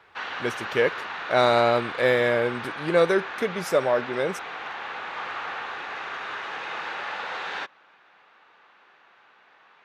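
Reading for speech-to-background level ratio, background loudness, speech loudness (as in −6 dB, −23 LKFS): 9.0 dB, −33.0 LKFS, −24.0 LKFS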